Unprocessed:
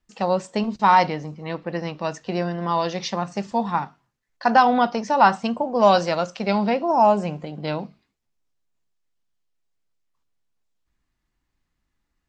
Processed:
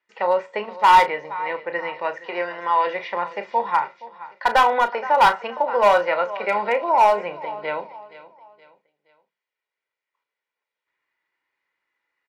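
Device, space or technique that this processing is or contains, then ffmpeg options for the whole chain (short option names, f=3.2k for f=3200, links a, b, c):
megaphone: -filter_complex "[0:a]asettb=1/sr,asplit=3[a][b][c];[a]atrim=end=2.174[d];[b]atrim=start=2.17:end=2.87,asetpts=PTS-STARTPTS,afade=t=in:d=0.004:c=qsin,afade=t=out:st=0.696:d=0.004:c=qsin,aemphasis=mode=production:type=bsi[e];[c]atrim=start=2.866[f];[d][e]acrossfade=d=0.004:c1=hsin:c2=qsin[g];[g][f]acrossfade=d=0.004:c1=qsin:c2=hsin,aecho=1:1:471|942|1413:0.126|0.0466|0.0172,acrossover=split=2900[h][i];[i]acompressor=threshold=-51dB:ratio=4:attack=1:release=60[j];[h][j]amix=inputs=2:normalize=0,highpass=550,lowpass=2.9k,equalizer=f=2.1k:t=o:w=0.4:g=9.5,asoftclip=type=hard:threshold=-13dB,aecho=1:1:2.1:0.48,asplit=2[k][l];[l]adelay=34,volume=-11dB[m];[k][m]amix=inputs=2:normalize=0,volume=2.5dB"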